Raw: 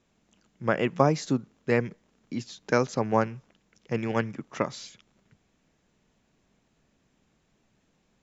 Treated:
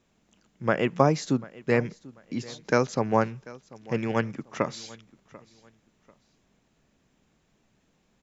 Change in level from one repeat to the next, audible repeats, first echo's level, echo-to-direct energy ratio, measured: -10.5 dB, 2, -21.0 dB, -20.5 dB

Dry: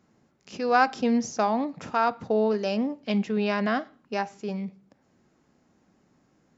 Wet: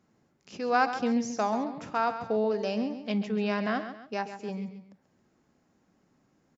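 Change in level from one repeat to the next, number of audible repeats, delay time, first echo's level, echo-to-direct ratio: -8.0 dB, 2, 136 ms, -10.5 dB, -10.0 dB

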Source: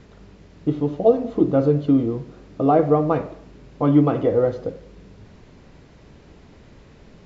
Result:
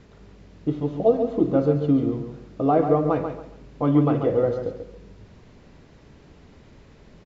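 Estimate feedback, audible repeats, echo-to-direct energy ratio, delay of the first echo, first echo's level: 26%, 3, -7.0 dB, 138 ms, -7.5 dB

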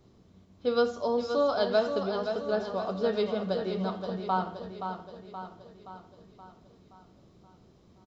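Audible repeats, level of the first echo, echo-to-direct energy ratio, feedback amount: 6, -7.5 dB, -6.0 dB, 54%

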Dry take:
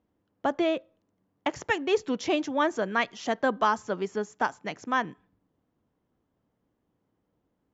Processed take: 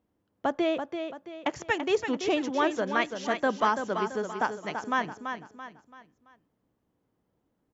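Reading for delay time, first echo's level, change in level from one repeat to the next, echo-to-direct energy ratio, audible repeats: 335 ms, -7.5 dB, -8.0 dB, -7.0 dB, 4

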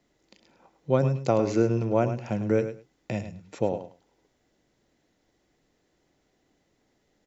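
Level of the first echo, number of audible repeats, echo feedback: -10.5 dB, 2, 16%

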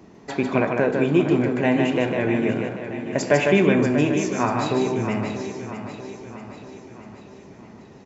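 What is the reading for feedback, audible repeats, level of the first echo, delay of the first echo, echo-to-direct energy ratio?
no regular repeats, 10, -4.5 dB, 151 ms, -3.0 dB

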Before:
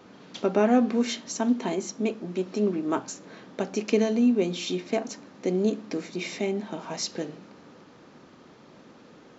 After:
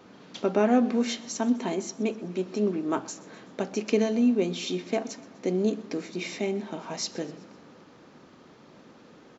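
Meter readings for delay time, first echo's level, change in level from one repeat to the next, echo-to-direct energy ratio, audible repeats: 126 ms, -21.0 dB, -5.0 dB, -19.5 dB, 3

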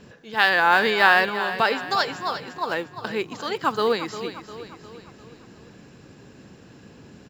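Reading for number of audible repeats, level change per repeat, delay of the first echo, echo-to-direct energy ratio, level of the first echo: 4, -6.0 dB, 352 ms, -10.5 dB, -12.0 dB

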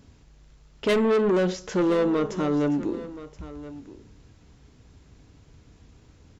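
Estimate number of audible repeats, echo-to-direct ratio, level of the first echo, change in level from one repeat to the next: 1, -16.0 dB, -16.0 dB, no regular repeats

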